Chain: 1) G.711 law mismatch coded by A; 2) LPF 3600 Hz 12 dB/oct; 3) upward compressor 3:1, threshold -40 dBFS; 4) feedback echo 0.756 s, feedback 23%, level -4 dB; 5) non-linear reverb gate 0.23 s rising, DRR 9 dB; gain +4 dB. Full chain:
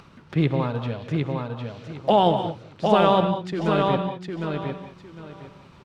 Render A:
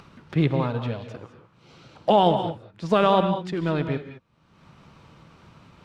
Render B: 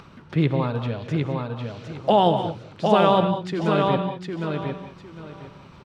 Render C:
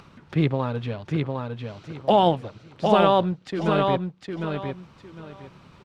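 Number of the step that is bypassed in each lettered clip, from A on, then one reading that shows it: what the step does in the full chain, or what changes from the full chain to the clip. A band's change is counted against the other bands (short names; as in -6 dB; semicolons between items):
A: 4, echo-to-direct -2.0 dB to -9.0 dB; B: 1, distortion -24 dB; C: 5, echo-to-direct -2.0 dB to -4.0 dB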